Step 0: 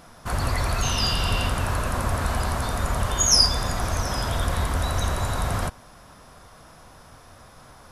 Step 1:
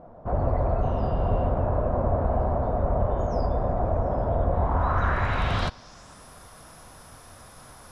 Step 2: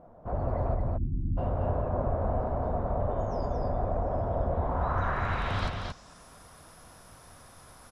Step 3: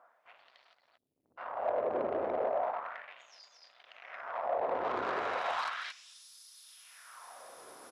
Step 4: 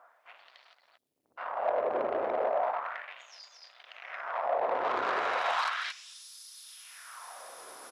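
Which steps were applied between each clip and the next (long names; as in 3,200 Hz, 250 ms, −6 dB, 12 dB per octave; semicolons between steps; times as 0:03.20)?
low-pass filter sweep 630 Hz → 11,000 Hz, 0:04.53–0:06.28
time-frequency box erased 0:00.75–0:01.37, 350–9,300 Hz; on a send: single-tap delay 226 ms −4 dB; on the sum: level −6 dB
soft clipping −29.5 dBFS, distortion −10 dB; auto-filter high-pass sine 0.35 Hz 360–4,400 Hz
low-shelf EQ 400 Hz −11 dB; level +6 dB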